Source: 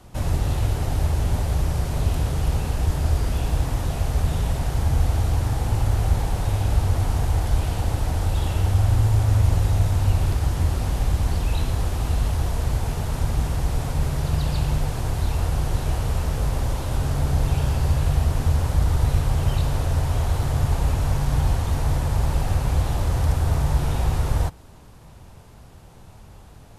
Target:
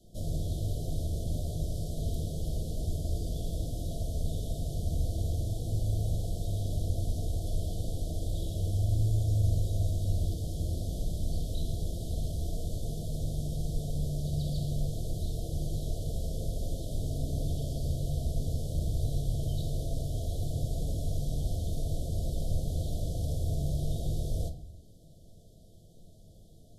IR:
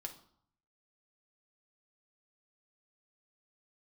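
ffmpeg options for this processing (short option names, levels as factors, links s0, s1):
-filter_complex "[0:a]asuperstop=centerf=1500:order=20:qfactor=0.6[s0];[1:a]atrim=start_sample=2205[s1];[s0][s1]afir=irnorm=-1:irlink=0,volume=0.531"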